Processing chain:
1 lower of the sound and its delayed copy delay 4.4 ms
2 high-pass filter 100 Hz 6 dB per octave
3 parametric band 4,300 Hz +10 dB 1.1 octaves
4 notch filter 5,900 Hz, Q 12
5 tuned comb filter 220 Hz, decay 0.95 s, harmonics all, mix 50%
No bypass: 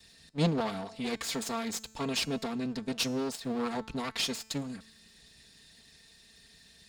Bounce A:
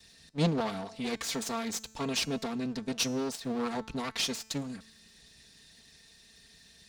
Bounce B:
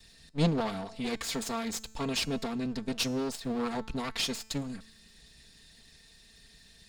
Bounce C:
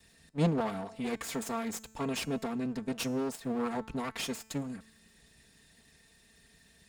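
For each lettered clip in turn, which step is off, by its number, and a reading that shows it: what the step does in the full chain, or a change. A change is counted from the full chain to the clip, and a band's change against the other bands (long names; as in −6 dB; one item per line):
4, 8 kHz band +2.0 dB
2, 125 Hz band +1.5 dB
3, 4 kHz band −7.5 dB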